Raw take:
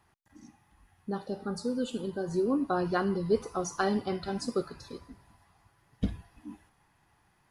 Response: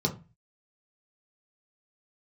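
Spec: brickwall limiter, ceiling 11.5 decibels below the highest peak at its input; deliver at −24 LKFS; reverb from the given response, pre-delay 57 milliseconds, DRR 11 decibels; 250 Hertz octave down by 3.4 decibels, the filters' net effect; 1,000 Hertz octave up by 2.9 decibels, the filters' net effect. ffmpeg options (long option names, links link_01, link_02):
-filter_complex "[0:a]equalizer=frequency=250:width_type=o:gain=-5,equalizer=frequency=1000:width_type=o:gain=4.5,alimiter=limit=-23.5dB:level=0:latency=1,asplit=2[link_01][link_02];[1:a]atrim=start_sample=2205,adelay=57[link_03];[link_02][link_03]afir=irnorm=-1:irlink=0,volume=-19dB[link_04];[link_01][link_04]amix=inputs=2:normalize=0,volume=9.5dB"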